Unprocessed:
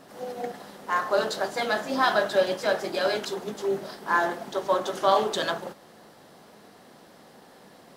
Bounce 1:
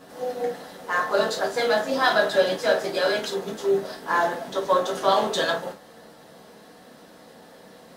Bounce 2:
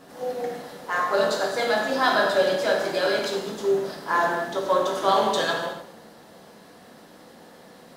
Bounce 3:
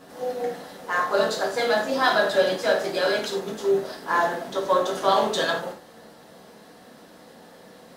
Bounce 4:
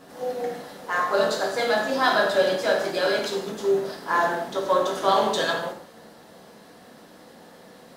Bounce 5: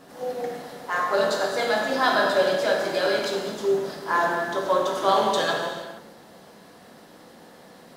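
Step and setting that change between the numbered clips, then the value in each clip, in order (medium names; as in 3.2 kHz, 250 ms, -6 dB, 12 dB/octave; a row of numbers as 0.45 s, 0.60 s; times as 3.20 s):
gated-style reverb, gate: 80 ms, 330 ms, 130 ms, 220 ms, 500 ms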